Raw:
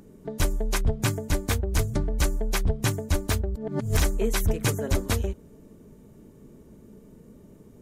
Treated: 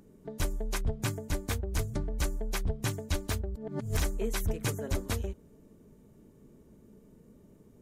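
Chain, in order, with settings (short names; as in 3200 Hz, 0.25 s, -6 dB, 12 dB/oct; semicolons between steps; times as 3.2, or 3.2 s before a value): 2.89–3.3 dynamic EQ 3500 Hz, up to +6 dB, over -50 dBFS, Q 0.79; gain -7 dB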